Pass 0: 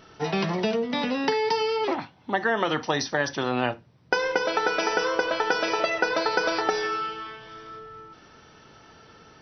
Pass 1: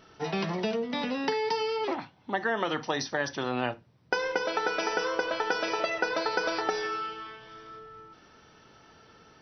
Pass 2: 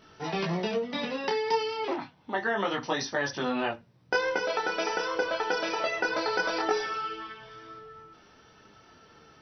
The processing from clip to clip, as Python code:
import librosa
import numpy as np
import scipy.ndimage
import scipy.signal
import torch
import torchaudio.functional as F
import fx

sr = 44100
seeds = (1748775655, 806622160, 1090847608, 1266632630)

y1 = fx.hum_notches(x, sr, base_hz=50, count=3)
y1 = y1 * 10.0 ** (-4.5 / 20.0)
y2 = fx.detune_double(y1, sr, cents=10)
y2 = y2 * 10.0 ** (4.0 / 20.0)